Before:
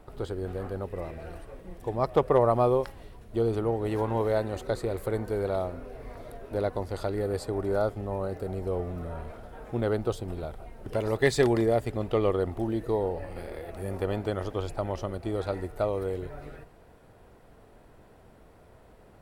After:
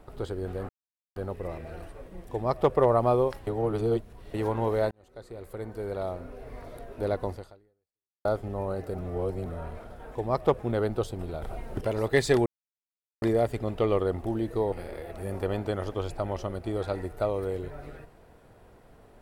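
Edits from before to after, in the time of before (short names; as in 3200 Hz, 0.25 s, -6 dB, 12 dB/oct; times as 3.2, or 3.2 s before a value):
0.69 insert silence 0.47 s
1.84–2.28 copy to 9.68
3–3.87 reverse
4.44–6.08 fade in
6.86–7.78 fade out exponential
8.51–8.99 reverse
10.51–10.9 gain +7 dB
11.55 insert silence 0.76 s
13.05–13.31 cut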